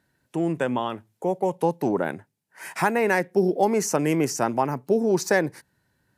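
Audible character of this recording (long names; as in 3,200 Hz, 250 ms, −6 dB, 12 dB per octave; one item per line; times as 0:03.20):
background noise floor −74 dBFS
spectral slope −4.5 dB per octave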